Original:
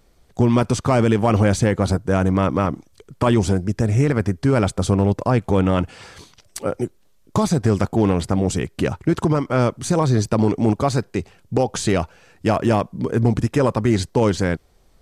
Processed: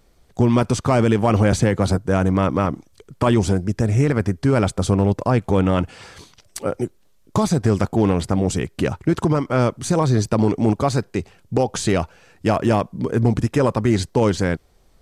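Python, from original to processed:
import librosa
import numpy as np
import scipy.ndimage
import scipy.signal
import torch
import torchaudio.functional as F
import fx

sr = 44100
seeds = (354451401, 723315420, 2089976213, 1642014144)

y = fx.band_squash(x, sr, depth_pct=40, at=(1.52, 1.99))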